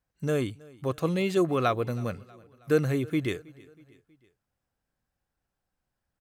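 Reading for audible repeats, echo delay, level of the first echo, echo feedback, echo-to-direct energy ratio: 3, 0.32 s, -23.5 dB, 53%, -22.0 dB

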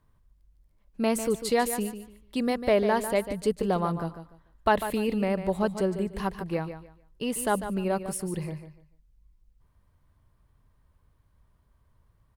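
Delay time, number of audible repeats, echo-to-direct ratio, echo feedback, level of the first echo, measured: 0.147 s, 2, -10.0 dB, 24%, -10.5 dB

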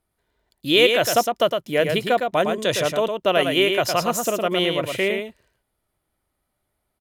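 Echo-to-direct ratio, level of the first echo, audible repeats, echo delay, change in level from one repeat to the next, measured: -5.5 dB, -5.5 dB, 1, 0.11 s, no steady repeat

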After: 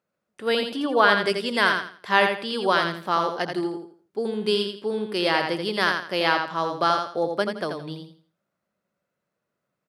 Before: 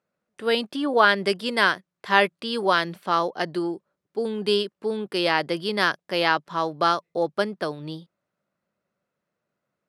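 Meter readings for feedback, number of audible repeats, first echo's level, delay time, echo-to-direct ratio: 28%, 3, -5.5 dB, 84 ms, -5.0 dB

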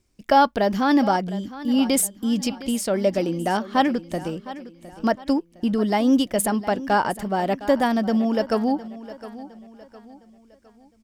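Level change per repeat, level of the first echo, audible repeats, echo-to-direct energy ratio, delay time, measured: -8.0 dB, -16.0 dB, 3, -15.5 dB, 0.71 s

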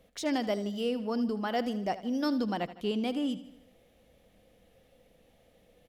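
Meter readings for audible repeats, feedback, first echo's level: 4, 52%, -15.0 dB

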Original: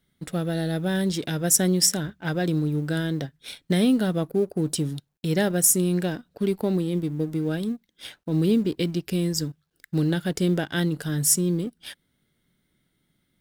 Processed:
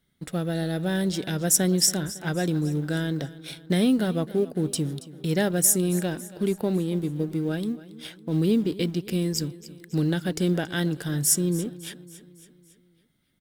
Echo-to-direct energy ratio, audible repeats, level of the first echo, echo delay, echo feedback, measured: -16.0 dB, 4, -17.5 dB, 0.278 s, 55%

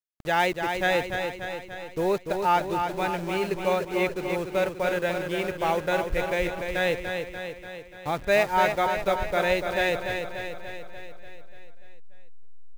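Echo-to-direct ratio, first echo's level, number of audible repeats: -4.0 dB, -6.0 dB, 7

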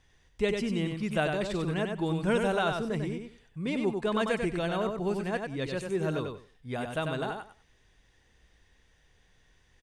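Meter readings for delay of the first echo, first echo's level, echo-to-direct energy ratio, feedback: 95 ms, -5.0 dB, -5.0 dB, 19%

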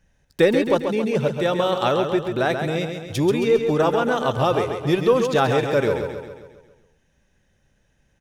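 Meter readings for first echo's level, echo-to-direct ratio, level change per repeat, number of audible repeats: -6.5 dB, -5.0 dB, -5.5 dB, 6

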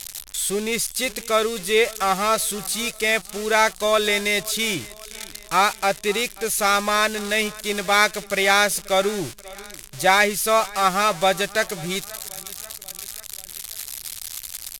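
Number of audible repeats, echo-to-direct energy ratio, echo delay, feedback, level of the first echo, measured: 3, -20.0 dB, 0.536 s, 55%, -21.5 dB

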